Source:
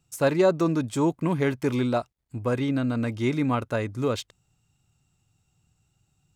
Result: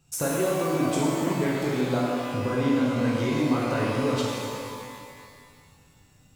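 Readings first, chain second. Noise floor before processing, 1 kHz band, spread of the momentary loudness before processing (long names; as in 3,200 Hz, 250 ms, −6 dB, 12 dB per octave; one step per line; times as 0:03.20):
−73 dBFS, +1.5 dB, 8 LU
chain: downward compressor 6 to 1, threshold −33 dBFS, peak gain reduction 16 dB
reverb with rising layers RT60 2.2 s, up +12 semitones, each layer −8 dB, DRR −5 dB
level +4.5 dB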